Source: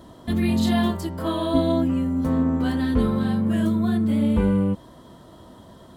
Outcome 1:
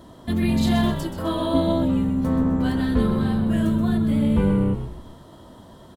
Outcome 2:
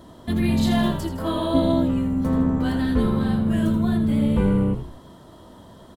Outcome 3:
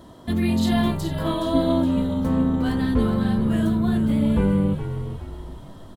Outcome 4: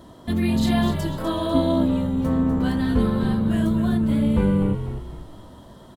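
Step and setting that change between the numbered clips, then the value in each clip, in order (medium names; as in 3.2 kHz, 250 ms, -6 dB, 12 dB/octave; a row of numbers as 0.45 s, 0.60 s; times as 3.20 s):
frequency-shifting echo, time: 128 ms, 81 ms, 418 ms, 248 ms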